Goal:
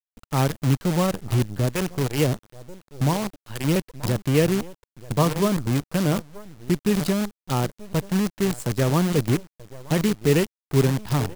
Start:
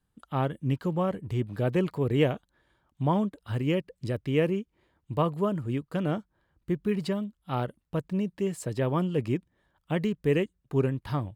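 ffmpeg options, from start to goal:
ffmpeg -i in.wav -filter_complex "[0:a]asplit=2[link_01][link_02];[link_02]adelay=932.9,volume=-15dB,highshelf=frequency=4000:gain=-21[link_03];[link_01][link_03]amix=inputs=2:normalize=0,asettb=1/sr,asplit=3[link_04][link_05][link_06];[link_04]atrim=end=1.594[link_07];[link_05]atrim=start=1.59:end=3.76,asetpts=PTS-STARTPTS,afade=type=in:duration=0.004:curve=qsin,afade=type=out:start_time=2.166:duration=0.004:curve=qsin,acrossover=split=570[link_08][link_09];[link_08]aeval=exprs='val(0)*(1-0.7/2+0.7/2*cos(2*PI*2.8*n/s))':channel_layout=same[link_10];[link_09]aeval=exprs='val(0)*(1-0.7/2-0.7/2*cos(2*PI*2.8*n/s))':channel_layout=same[link_11];[link_10][link_11]amix=inputs=2:normalize=0[link_12];[link_06]atrim=start=3.756[link_13];[link_07][link_12]acrossfade=duration=0.004:curve1=hsin:curve2=qsin[link_14];[link_14][link_13]acrossfade=duration=0.004:curve1=qsin:curve2=hsin,acrusher=bits=6:dc=4:mix=0:aa=0.000001,bass=frequency=250:gain=4,treble=frequency=4000:gain=4,volume=4dB" out.wav

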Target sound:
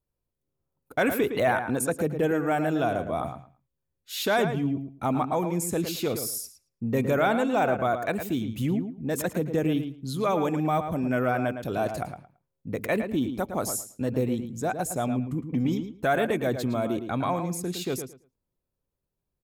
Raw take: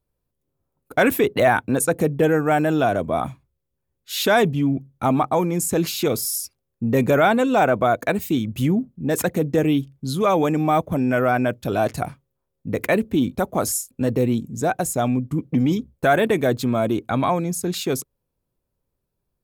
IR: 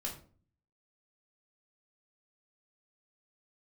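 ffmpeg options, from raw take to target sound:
-filter_complex "[0:a]asplit=2[link_01][link_02];[link_02]adelay=111,lowpass=frequency=3300:poles=1,volume=-8dB,asplit=2[link_03][link_04];[link_04]adelay=111,lowpass=frequency=3300:poles=1,volume=0.19,asplit=2[link_05][link_06];[link_06]adelay=111,lowpass=frequency=3300:poles=1,volume=0.19[link_07];[link_01][link_03][link_05][link_07]amix=inputs=4:normalize=0,volume=-7dB"

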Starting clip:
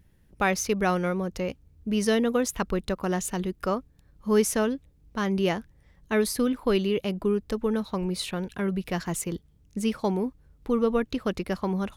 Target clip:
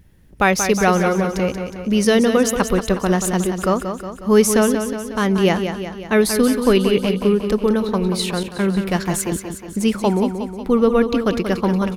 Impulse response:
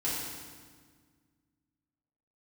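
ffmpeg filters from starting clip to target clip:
-filter_complex "[0:a]aecho=1:1:182|364|546|728|910|1092|1274:0.398|0.227|0.129|0.0737|0.042|0.024|0.0137,asettb=1/sr,asplit=3[link_01][link_02][link_03];[link_01]atrim=end=8.434[link_04];[link_02]atrim=start=8.43:end=9.08,asetpts=PTS-STARTPTS,afade=type=in:duration=0.004:curve=qsin,afade=type=out:start_time=0.646:duration=0.004:curve=qsin,agate=range=-33dB:threshold=-31dB:ratio=3:detection=peak[link_05];[link_03]atrim=start=9.076[link_06];[link_04][link_05]acrossfade=duration=0.004:curve1=hsin:curve2=qsin[link_07];[link_07][link_06]acrossfade=duration=0.004:curve1=qsin:curve2=hsin,volume=8.5dB"

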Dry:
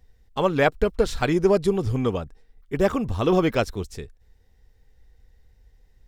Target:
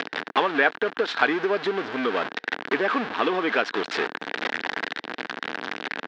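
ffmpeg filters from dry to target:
ffmpeg -i in.wav -af "aeval=exprs='val(0)+0.5*0.075*sgn(val(0))':channel_layout=same,acompressor=threshold=-25dB:ratio=6,highpass=frequency=310:width=0.5412,highpass=frequency=310:width=1.3066,equalizer=frequency=360:width_type=q:width=4:gain=-6,equalizer=frequency=550:width_type=q:width=4:gain=-8,equalizer=frequency=1600:width_type=q:width=4:gain=8,lowpass=frequency=3800:width=0.5412,lowpass=frequency=3800:width=1.3066,volume=9dB" out.wav

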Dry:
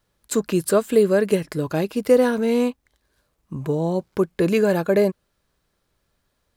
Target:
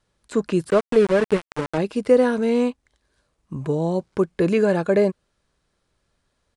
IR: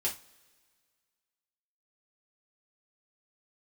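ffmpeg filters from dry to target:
-filter_complex "[0:a]asettb=1/sr,asplit=3[link_01][link_02][link_03];[link_01]atrim=end=0.704[link_04];[link_02]atrim=start=0.7:end=1.78,asetpts=PTS-STARTPTS,afade=type=in:duration=0.004:curve=qsin,afade=type=out:start_time=1.076:duration=0.004:curve=qsin,aeval=exprs='val(0)*gte(abs(val(0)),0.0891)':channel_layout=same[link_05];[link_03]atrim=start=1.776[link_06];[link_04][link_05]acrossfade=duration=0.004:curve1=hsin:curve2=qsin[link_07];[link_07][link_06]acrossfade=duration=0.004:curve1=qsin:curve2=hsin,acrossover=split=2900[link_08][link_09];[link_09]acompressor=threshold=-40dB:ratio=4:attack=1:release=60[link_10];[link_08][link_10]amix=inputs=2:normalize=0,aresample=22050,aresample=44100"

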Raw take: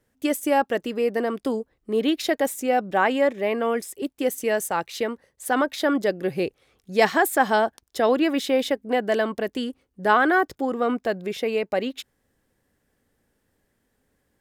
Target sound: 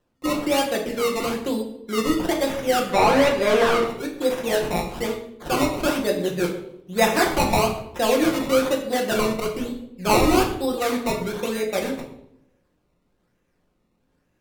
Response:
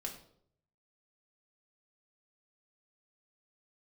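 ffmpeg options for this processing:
-filter_complex "[0:a]acrusher=samples=19:mix=1:aa=0.000001:lfo=1:lforange=19:lforate=1.1,asettb=1/sr,asplit=3[link_01][link_02][link_03];[link_01]atrim=end=2.894[link_04];[link_02]atrim=start=2.89:end=3.84,asetpts=PTS-STARTPTS,afade=type=in:duration=0.004:curve=qsin,afade=type=out:start_time=0.946:duration=0.004:curve=qsin,asplit=2[link_05][link_06];[link_06]highpass=frequency=720:poles=1,volume=20dB,asoftclip=type=tanh:threshold=-7.5dB[link_07];[link_05][link_07]amix=inputs=2:normalize=0,lowpass=frequency=2500:poles=1,volume=-6dB[link_08];[link_03]atrim=start=3.836[link_09];[link_04][link_08]acrossfade=duration=0.004:curve1=hsin:curve2=qsin[link_10];[link_10][link_09]acrossfade=duration=0.004:curve1=qsin:curve2=hsin[link_11];[1:a]atrim=start_sample=2205,asetrate=34398,aresample=44100[link_12];[link_11][link_12]afir=irnorm=-1:irlink=0"

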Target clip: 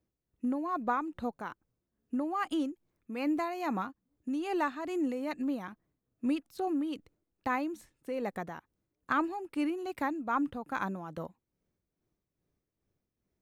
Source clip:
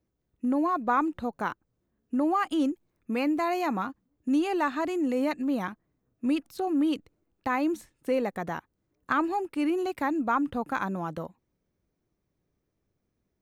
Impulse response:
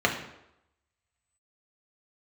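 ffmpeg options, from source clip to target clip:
-af "tremolo=f=2.4:d=0.56,volume=-3dB"

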